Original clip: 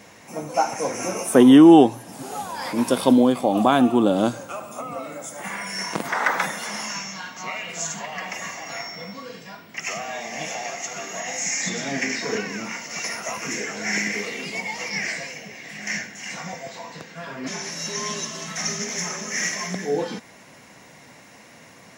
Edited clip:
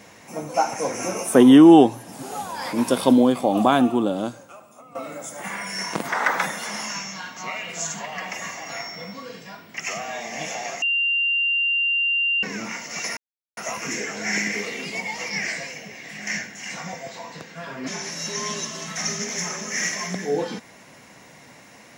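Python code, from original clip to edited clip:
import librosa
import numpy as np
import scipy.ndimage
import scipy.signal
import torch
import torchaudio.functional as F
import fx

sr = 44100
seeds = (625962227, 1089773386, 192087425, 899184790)

y = fx.edit(x, sr, fx.fade_out_to(start_s=3.74, length_s=1.21, curve='qua', floor_db=-14.5),
    fx.bleep(start_s=10.82, length_s=1.61, hz=2780.0, db=-18.5),
    fx.insert_silence(at_s=13.17, length_s=0.4), tone=tone)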